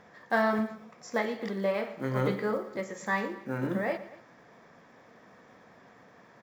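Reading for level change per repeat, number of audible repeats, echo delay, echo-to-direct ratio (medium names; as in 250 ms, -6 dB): -4.5 dB, 2, 117 ms, -14.0 dB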